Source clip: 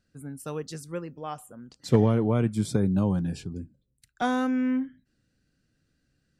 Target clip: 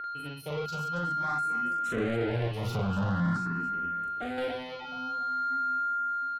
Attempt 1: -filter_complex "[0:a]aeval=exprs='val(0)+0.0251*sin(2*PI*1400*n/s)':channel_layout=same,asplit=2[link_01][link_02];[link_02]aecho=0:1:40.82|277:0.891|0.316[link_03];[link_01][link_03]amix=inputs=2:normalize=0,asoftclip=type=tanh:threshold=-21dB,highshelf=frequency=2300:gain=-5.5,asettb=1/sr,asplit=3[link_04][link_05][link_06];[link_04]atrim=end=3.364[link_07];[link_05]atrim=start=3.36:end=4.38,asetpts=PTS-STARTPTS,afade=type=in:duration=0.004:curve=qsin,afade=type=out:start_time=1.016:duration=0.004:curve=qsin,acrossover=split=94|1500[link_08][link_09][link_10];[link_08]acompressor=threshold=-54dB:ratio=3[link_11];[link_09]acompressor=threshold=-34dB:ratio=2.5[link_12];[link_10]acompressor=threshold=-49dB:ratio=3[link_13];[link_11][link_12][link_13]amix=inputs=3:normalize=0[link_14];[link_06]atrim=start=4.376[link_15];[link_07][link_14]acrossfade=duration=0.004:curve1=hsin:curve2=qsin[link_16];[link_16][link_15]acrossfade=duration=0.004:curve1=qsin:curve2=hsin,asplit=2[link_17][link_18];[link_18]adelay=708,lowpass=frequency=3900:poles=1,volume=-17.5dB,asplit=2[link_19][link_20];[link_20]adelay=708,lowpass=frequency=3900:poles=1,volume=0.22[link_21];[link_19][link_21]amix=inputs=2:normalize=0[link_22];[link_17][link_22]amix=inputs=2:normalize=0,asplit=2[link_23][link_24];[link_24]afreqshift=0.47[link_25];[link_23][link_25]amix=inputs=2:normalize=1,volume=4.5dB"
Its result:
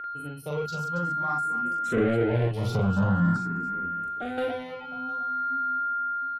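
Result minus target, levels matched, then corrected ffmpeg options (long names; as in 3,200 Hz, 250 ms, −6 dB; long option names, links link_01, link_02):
soft clipping: distortion −5 dB
-filter_complex "[0:a]aeval=exprs='val(0)+0.0251*sin(2*PI*1400*n/s)':channel_layout=same,asplit=2[link_01][link_02];[link_02]aecho=0:1:40.82|277:0.891|0.316[link_03];[link_01][link_03]amix=inputs=2:normalize=0,asoftclip=type=tanh:threshold=-28.5dB,highshelf=frequency=2300:gain=-5.5,asettb=1/sr,asplit=3[link_04][link_05][link_06];[link_04]atrim=end=3.364[link_07];[link_05]atrim=start=3.36:end=4.38,asetpts=PTS-STARTPTS,afade=type=in:duration=0.004:curve=qsin,afade=type=out:start_time=1.016:duration=0.004:curve=qsin,acrossover=split=94|1500[link_08][link_09][link_10];[link_08]acompressor=threshold=-54dB:ratio=3[link_11];[link_09]acompressor=threshold=-34dB:ratio=2.5[link_12];[link_10]acompressor=threshold=-49dB:ratio=3[link_13];[link_11][link_12][link_13]amix=inputs=3:normalize=0[link_14];[link_06]atrim=start=4.376[link_15];[link_07][link_14]acrossfade=duration=0.004:curve1=hsin:curve2=qsin[link_16];[link_16][link_15]acrossfade=duration=0.004:curve1=qsin:curve2=hsin,asplit=2[link_17][link_18];[link_18]adelay=708,lowpass=frequency=3900:poles=1,volume=-17.5dB,asplit=2[link_19][link_20];[link_20]adelay=708,lowpass=frequency=3900:poles=1,volume=0.22[link_21];[link_19][link_21]amix=inputs=2:normalize=0[link_22];[link_17][link_22]amix=inputs=2:normalize=0,asplit=2[link_23][link_24];[link_24]afreqshift=0.47[link_25];[link_23][link_25]amix=inputs=2:normalize=1,volume=4.5dB"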